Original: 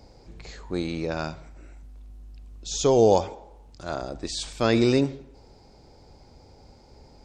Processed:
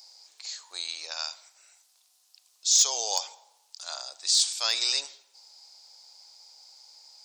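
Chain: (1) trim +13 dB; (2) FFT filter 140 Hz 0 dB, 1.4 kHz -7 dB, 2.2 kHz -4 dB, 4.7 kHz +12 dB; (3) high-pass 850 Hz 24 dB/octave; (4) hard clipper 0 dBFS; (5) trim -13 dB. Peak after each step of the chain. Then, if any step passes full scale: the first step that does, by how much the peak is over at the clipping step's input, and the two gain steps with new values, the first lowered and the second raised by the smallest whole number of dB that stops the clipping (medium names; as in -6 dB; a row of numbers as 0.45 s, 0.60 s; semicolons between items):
+6.5 dBFS, +7.0 dBFS, +5.5 dBFS, 0.0 dBFS, -13.0 dBFS; step 1, 5.5 dB; step 1 +7 dB, step 5 -7 dB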